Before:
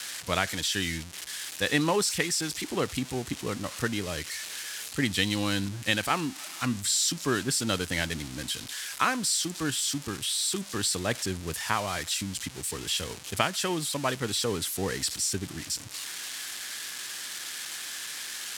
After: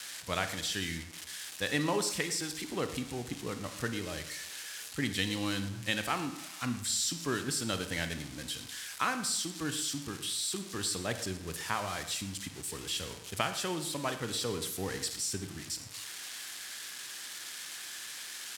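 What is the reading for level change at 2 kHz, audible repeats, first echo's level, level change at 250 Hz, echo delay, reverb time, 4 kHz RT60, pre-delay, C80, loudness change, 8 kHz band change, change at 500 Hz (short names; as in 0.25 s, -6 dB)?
-5.5 dB, 1, -16.5 dB, -5.5 dB, 0.113 s, 0.85 s, 0.60 s, 31 ms, 12.0 dB, -5.5 dB, -5.5 dB, -5.5 dB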